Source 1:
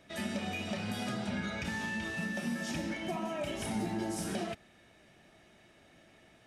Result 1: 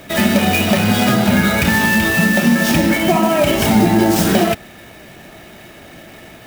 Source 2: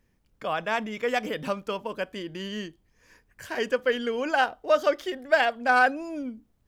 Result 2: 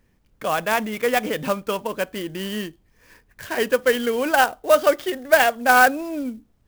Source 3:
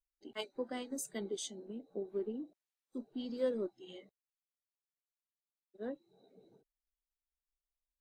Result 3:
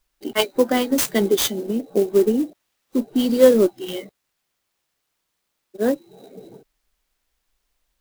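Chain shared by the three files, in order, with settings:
clock jitter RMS 0.028 ms; normalise peaks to -2 dBFS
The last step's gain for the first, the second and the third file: +22.5, +6.0, +21.5 dB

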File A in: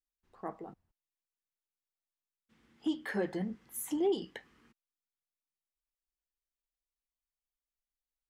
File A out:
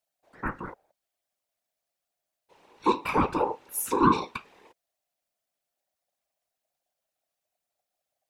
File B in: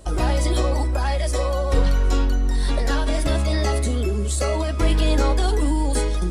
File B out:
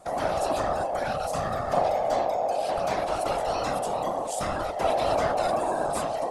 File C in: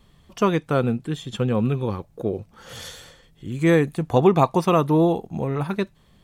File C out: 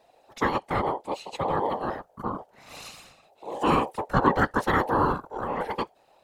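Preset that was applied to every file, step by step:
ring modulator 670 Hz; whisperiser; match loudness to -27 LUFS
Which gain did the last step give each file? +11.5, -4.5, -2.5 dB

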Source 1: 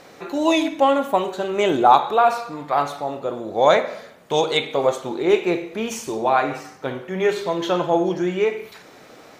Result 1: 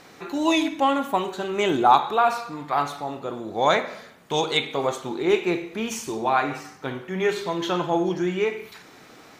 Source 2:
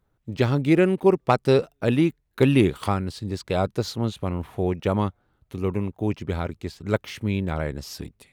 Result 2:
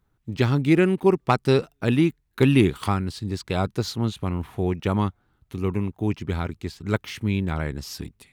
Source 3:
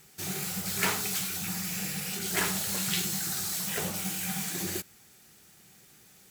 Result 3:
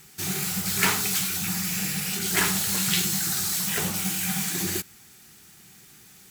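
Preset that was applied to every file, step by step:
bell 560 Hz -7.5 dB 0.7 oct; match loudness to -24 LUFS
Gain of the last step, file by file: -1.0, +1.5, +6.0 dB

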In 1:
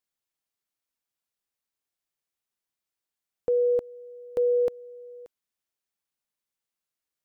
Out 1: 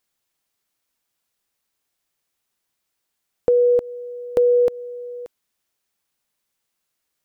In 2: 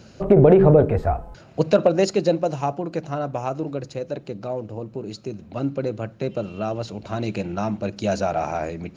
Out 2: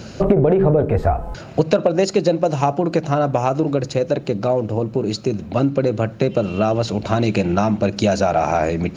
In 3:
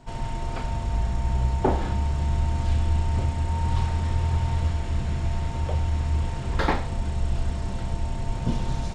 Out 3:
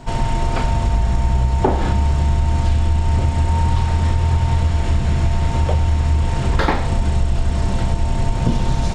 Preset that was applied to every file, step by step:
compressor 5:1, threshold -25 dBFS; match loudness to -19 LUFS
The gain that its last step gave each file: +11.0, +12.0, +12.5 dB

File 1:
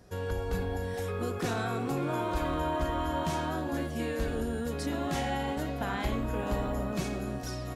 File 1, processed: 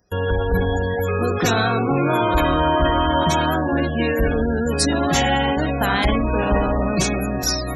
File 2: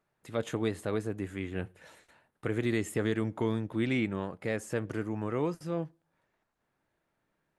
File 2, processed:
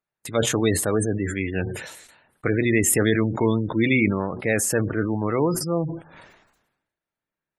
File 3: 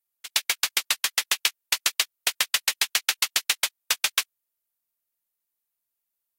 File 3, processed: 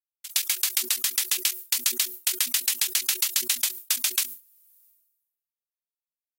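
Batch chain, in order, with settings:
spectral gate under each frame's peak -25 dB strong; pre-emphasis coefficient 0.8; de-hum 122.9 Hz, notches 3; gate with hold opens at -50 dBFS; sustainer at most 57 dB/s; normalise peaks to -6 dBFS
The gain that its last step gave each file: +26.0, +22.5, +1.5 dB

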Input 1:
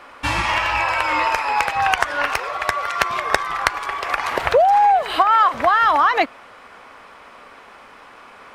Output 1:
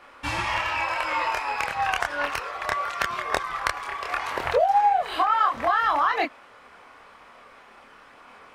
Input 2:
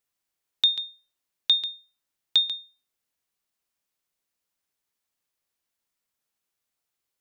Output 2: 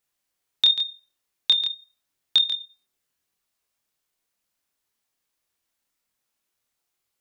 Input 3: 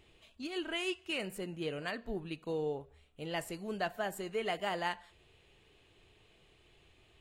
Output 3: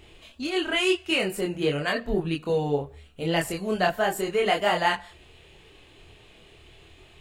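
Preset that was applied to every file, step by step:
chorus voices 2, 0.9 Hz, delay 26 ms, depth 2 ms; normalise peaks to -9 dBFS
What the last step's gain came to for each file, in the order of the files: -3.5, +7.0, +15.0 dB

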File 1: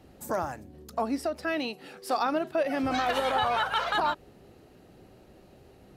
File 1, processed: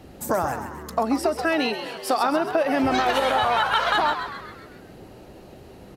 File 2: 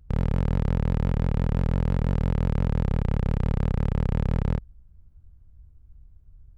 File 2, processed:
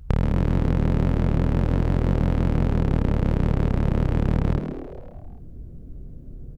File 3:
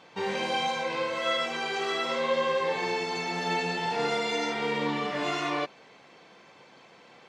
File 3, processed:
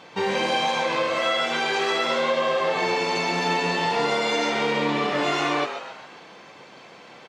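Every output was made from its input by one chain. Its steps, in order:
compressor 6:1, threshold -27 dBFS; frequency-shifting echo 0.133 s, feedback 52%, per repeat +110 Hz, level -9.5 dB; match loudness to -23 LUFS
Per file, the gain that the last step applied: +9.0, +10.5, +7.5 dB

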